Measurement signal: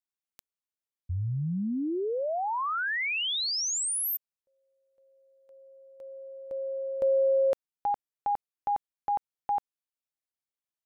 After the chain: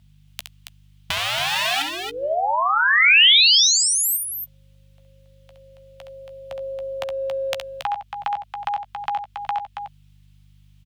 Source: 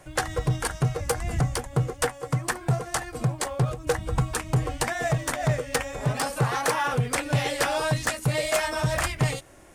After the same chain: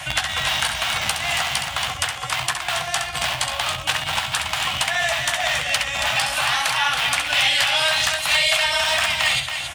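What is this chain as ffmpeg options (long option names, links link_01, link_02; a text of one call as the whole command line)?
ffmpeg -i in.wav -filter_complex "[0:a]acrossover=split=160|640|1300[link_01][link_02][link_03][link_04];[link_01]acompressor=threshold=-26dB:ratio=4[link_05];[link_02]acompressor=threshold=-31dB:ratio=4[link_06];[link_03]acompressor=threshold=-38dB:ratio=4[link_07];[link_04]acompressor=threshold=-31dB:ratio=4[link_08];[link_05][link_06][link_07][link_08]amix=inputs=4:normalize=0,acrossover=split=320[link_09][link_10];[link_09]aeval=exprs='(mod(42.2*val(0)+1,2)-1)/42.2':channel_layout=same[link_11];[link_11][link_10]amix=inputs=2:normalize=0,aeval=exprs='val(0)+0.000891*(sin(2*PI*50*n/s)+sin(2*PI*2*50*n/s)/2+sin(2*PI*3*50*n/s)/3+sin(2*PI*4*50*n/s)/4+sin(2*PI*5*50*n/s)/5)':channel_layout=same,firequalizer=gain_entry='entry(130,0);entry(250,-11);entry(440,-21);entry(670,4)':delay=0.05:min_phase=1,acompressor=threshold=-36dB:ratio=4:attack=2.5:release=697:knee=1:detection=peak,highpass=frequency=52:width=0.5412,highpass=frequency=52:width=1.3066,equalizer=frequency=3100:width_type=o:width=1.2:gain=14,asplit=2[link_12][link_13];[link_13]adelay=14,volume=-11.5dB[link_14];[link_12][link_14]amix=inputs=2:normalize=0,aecho=1:1:67.06|277:0.447|0.447,apsyclip=20.5dB,volume=-7.5dB" out.wav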